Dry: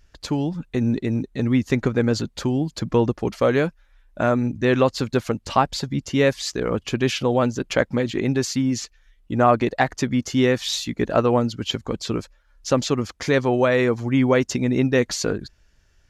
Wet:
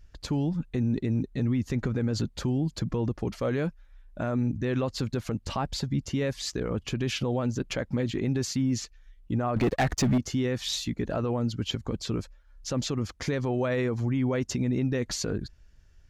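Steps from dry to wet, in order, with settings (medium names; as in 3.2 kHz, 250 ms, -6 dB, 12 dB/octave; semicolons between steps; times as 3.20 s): bass shelf 210 Hz +9.5 dB; 9.56–10.18 s: waveshaping leveller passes 3; peak limiter -13 dBFS, peak gain reduction 11 dB; trim -5.5 dB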